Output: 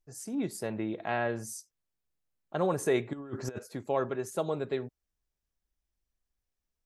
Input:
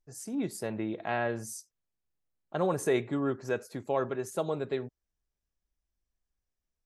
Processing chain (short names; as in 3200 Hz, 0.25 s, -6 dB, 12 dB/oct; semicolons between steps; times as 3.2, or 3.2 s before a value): 3.13–3.59 negative-ratio compressor -36 dBFS, ratio -0.5